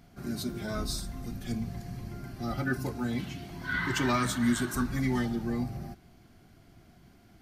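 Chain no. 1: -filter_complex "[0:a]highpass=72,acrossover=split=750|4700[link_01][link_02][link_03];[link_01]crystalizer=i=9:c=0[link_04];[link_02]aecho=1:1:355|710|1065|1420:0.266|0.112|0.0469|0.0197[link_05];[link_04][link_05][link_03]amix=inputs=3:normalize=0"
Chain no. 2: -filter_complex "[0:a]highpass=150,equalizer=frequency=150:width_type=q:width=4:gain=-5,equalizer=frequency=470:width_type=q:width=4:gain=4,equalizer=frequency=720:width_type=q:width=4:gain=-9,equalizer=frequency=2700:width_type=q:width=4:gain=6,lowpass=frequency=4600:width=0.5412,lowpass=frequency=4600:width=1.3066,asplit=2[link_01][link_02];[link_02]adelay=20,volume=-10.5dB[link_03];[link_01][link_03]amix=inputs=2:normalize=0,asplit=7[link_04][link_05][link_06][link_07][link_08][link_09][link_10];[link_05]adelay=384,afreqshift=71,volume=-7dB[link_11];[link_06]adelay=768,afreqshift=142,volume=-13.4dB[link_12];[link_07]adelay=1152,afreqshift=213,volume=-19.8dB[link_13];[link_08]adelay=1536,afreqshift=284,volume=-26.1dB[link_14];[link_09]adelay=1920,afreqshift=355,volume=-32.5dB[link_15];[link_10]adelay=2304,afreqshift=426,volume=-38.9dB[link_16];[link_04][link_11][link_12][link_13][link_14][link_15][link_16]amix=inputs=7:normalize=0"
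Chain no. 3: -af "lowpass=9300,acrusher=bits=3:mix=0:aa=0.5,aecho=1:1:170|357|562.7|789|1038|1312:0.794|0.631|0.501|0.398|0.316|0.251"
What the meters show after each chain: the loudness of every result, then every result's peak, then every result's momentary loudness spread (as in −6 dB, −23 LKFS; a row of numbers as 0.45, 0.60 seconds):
−32.0, −32.0, −29.0 LKFS; −15.0, −15.0, −11.0 dBFS; 14, 15, 21 LU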